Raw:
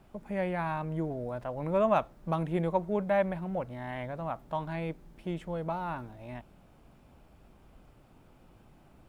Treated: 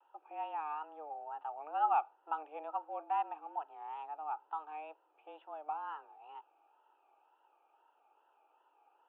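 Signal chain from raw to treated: vowel filter a; wow and flutter 110 cents; mistuned SSB +150 Hz 160–3200 Hz; trim +2 dB

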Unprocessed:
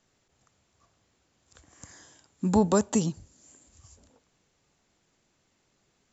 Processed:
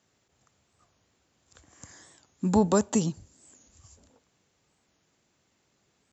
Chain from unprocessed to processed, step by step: high-pass 50 Hz; warped record 45 rpm, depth 160 cents

